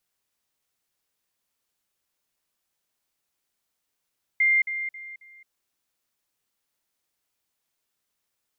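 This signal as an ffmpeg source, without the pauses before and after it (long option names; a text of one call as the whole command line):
ffmpeg -f lavfi -i "aevalsrc='pow(10,(-17-10*floor(t/0.27))/20)*sin(2*PI*2100*t)*clip(min(mod(t,0.27),0.22-mod(t,0.27))/0.005,0,1)':duration=1.08:sample_rate=44100" out.wav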